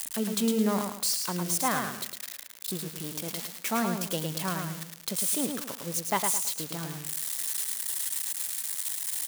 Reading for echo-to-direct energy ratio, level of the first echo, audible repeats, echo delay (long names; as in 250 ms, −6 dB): −4.5 dB, −5.0 dB, 4, 108 ms